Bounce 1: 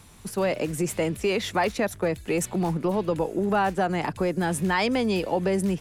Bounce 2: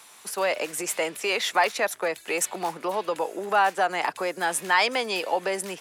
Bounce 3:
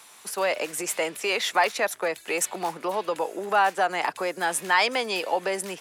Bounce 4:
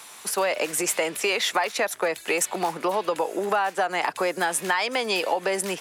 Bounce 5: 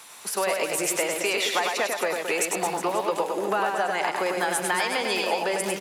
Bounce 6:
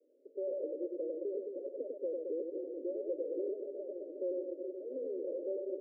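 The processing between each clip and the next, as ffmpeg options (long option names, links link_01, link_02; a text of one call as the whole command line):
ffmpeg -i in.wav -af "highpass=700,volume=5dB" out.wav
ffmpeg -i in.wav -af anull out.wav
ffmpeg -i in.wav -af "acompressor=threshold=-26dB:ratio=10,volume=6dB" out.wav
ffmpeg -i in.wav -af "aecho=1:1:100|220|364|536.8|744.2:0.631|0.398|0.251|0.158|0.1,volume=-2.5dB" out.wav
ffmpeg -i in.wav -af "asoftclip=type=tanh:threshold=-24dB,asuperpass=centerf=390:order=20:qfactor=1.2,volume=-5dB" out.wav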